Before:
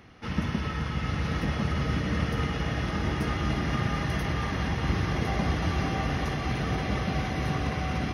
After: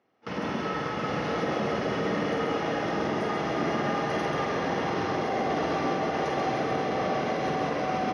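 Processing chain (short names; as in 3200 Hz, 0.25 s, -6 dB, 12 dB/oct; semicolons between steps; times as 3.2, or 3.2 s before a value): gate with hold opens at -26 dBFS; Chebyshev band-pass 570–7100 Hz, order 2; tilt shelf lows +10 dB, about 670 Hz; limiter -29.5 dBFS, peak gain reduction 6 dB; doubler 48 ms -6 dB; echo 0.136 s -4.5 dB; gain +8 dB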